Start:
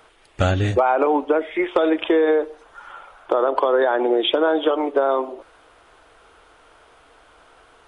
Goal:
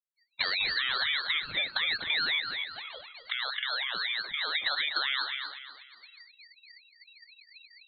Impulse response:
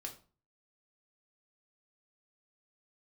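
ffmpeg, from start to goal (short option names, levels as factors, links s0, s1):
-filter_complex "[0:a]alimiter=limit=0.224:level=0:latency=1:release=66,equalizer=f=830:t=o:w=1.7:g=-3,asettb=1/sr,asplit=3[s0][s1][s2];[s0]atrim=end=2.394[s3];[s1]atrim=start=2.39:end=4.55,asetpts=PTS-STARTPTS,afade=t=in:d=0.004:c=qsin,afade=t=out:st=2.156:d=0.004:c=qsin,acompressor=threshold=0.0501:ratio=6[s4];[s2]atrim=start=4.546[s5];[s3][s4]acrossfade=d=0.004:c1=hsin:c2=qsin[s6];[s6][s5]acrossfade=d=0.004:c1=qsin:c2=hsin,asubboost=boost=5:cutoff=53,afftfilt=real='re*gte(hypot(re,im),0.0251)':imag='im*gte(hypot(re,im),0.0251)':win_size=1024:overlap=0.75,asplit=5[s7][s8][s9][s10][s11];[s8]adelay=242,afreqshift=38,volume=0.299[s12];[s9]adelay=484,afreqshift=76,volume=0.107[s13];[s10]adelay=726,afreqshift=114,volume=0.0389[s14];[s11]adelay=968,afreqshift=152,volume=0.014[s15];[s7][s12][s13][s14][s15]amix=inputs=5:normalize=0,lowpass=f=2800:t=q:w=0.5098,lowpass=f=2800:t=q:w=0.6013,lowpass=f=2800:t=q:w=0.9,lowpass=f=2800:t=q:w=2.563,afreqshift=-3300,acrossover=split=150|710|1700[s16][s17][s18][s19];[s16]acompressor=threshold=0.00158:ratio=4[s20];[s17]acompressor=threshold=0.001:ratio=4[s21];[s18]acompressor=threshold=0.00891:ratio=4[s22];[s19]acompressor=threshold=0.0562:ratio=4[s23];[s20][s21][s22][s23]amix=inputs=4:normalize=0,aeval=exprs='val(0)*sin(2*PI*990*n/s+990*0.45/4*sin(2*PI*4*n/s))':c=same"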